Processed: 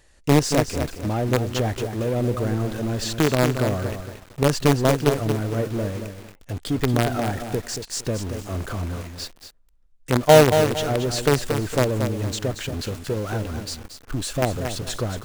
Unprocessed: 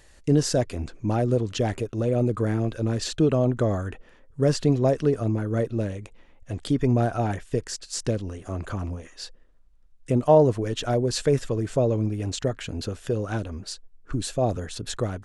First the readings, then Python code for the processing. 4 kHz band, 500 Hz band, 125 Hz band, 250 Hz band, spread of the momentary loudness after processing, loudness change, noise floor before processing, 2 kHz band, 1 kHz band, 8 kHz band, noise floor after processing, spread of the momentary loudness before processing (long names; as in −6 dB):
+5.5 dB, +2.5 dB, +1.5 dB, +1.5 dB, 13 LU, +2.5 dB, −54 dBFS, +9.5 dB, +5.0 dB, +5.0 dB, −53 dBFS, 13 LU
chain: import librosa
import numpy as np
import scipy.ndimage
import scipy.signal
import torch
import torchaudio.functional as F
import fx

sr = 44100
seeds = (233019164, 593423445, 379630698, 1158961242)

p1 = fx.quant_companded(x, sr, bits=2)
p2 = x + (p1 * 10.0 ** (-5.5 / 20.0))
p3 = fx.echo_crushed(p2, sr, ms=229, feedback_pct=35, bits=6, wet_db=-7.0)
y = p3 * 10.0 ** (-3.0 / 20.0)